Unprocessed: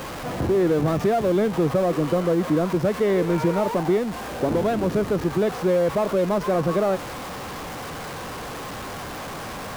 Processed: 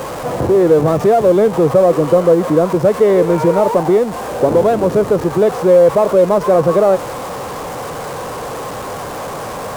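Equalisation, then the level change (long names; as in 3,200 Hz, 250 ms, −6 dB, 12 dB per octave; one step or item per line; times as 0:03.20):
graphic EQ with 10 bands 125 Hz +5 dB, 500 Hz +10 dB, 1,000 Hz +6 dB, 8,000 Hz +5 dB, 16,000 Hz +4 dB
+1.5 dB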